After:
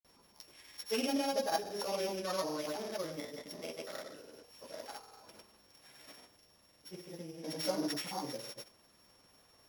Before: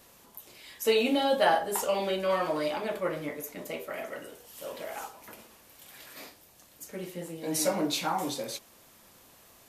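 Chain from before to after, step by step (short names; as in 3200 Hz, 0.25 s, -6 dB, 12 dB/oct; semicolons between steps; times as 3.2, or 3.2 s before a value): sample sorter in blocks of 8 samples; grains, pitch spread up and down by 0 st; gain -6 dB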